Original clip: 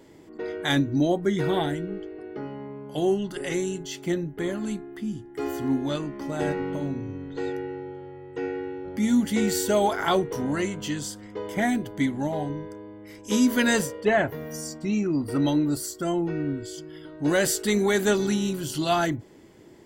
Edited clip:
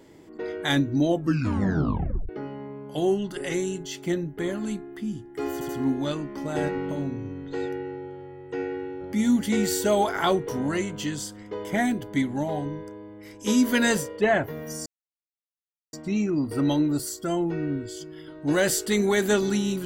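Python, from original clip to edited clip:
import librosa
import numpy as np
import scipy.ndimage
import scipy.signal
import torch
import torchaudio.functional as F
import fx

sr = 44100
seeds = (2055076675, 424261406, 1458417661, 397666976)

y = fx.edit(x, sr, fx.tape_stop(start_s=1.07, length_s=1.22),
    fx.stutter(start_s=5.53, slice_s=0.08, count=3),
    fx.insert_silence(at_s=14.7, length_s=1.07), tone=tone)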